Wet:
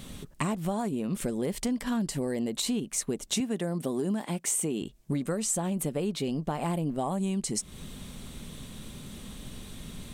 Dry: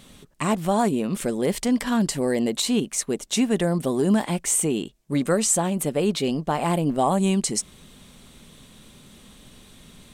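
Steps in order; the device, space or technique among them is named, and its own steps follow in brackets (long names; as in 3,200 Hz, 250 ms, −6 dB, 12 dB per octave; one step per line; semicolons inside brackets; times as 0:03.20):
0:03.40–0:04.82: high-pass filter 160 Hz 12 dB per octave
ASMR close-microphone chain (low-shelf EQ 250 Hz +7 dB; downward compressor 6 to 1, threshold −30 dBFS, peak gain reduction 16 dB; high-shelf EQ 11,000 Hz +4.5 dB)
level +2 dB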